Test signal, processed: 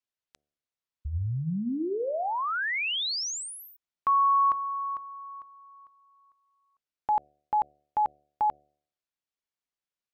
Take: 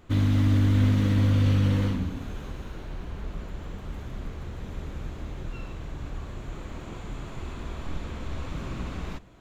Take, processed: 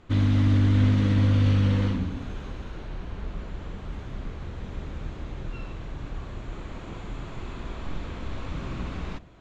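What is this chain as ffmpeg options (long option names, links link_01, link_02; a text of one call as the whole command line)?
ffmpeg -i in.wav -af "lowpass=5900,bandreject=frequency=73.37:width_type=h:width=4,bandreject=frequency=146.74:width_type=h:width=4,bandreject=frequency=220.11:width_type=h:width=4,bandreject=frequency=293.48:width_type=h:width=4,bandreject=frequency=366.85:width_type=h:width=4,bandreject=frequency=440.22:width_type=h:width=4,bandreject=frequency=513.59:width_type=h:width=4,bandreject=frequency=586.96:width_type=h:width=4,bandreject=frequency=660.33:width_type=h:width=4,bandreject=frequency=733.7:width_type=h:width=4,volume=1dB" out.wav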